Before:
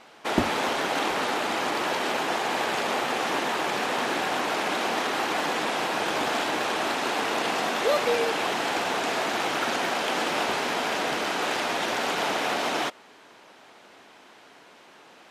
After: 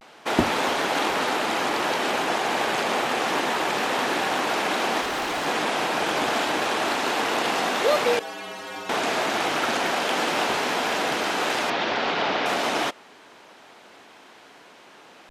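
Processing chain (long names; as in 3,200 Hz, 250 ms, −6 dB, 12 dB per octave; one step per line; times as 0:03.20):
0:08.20–0:08.90: stiff-string resonator 96 Hz, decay 0.4 s, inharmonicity 0.008
0:11.71–0:12.46: low-pass filter 5,000 Hz 24 dB per octave
pitch vibrato 0.3 Hz 36 cents
0:05.01–0:05.46: gain into a clipping stage and back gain 26.5 dB
level +2.5 dB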